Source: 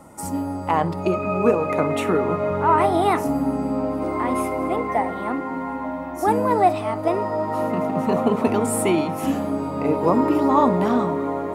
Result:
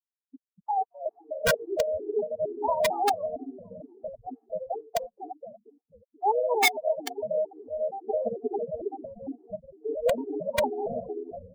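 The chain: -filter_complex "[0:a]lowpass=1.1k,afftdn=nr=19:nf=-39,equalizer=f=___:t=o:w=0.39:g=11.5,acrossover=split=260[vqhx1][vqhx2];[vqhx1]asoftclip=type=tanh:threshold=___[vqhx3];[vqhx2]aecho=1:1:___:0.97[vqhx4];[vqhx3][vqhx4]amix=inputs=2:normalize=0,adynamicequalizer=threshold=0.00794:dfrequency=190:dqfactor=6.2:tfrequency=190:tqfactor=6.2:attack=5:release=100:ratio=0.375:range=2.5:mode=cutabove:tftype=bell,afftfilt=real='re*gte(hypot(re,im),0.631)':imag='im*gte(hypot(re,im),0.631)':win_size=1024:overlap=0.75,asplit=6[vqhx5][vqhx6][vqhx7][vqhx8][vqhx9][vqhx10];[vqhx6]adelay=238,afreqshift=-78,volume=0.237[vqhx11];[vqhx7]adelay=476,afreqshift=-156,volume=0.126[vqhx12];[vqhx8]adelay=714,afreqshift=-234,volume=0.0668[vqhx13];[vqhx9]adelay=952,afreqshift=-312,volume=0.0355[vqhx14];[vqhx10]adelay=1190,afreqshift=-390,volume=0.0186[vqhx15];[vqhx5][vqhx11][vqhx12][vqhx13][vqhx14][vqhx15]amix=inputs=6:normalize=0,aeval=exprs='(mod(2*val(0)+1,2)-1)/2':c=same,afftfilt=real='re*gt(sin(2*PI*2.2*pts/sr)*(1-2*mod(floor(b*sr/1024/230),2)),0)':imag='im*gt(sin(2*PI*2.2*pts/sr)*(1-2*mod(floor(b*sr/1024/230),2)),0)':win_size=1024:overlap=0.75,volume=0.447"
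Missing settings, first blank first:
430, 0.0501, 1.4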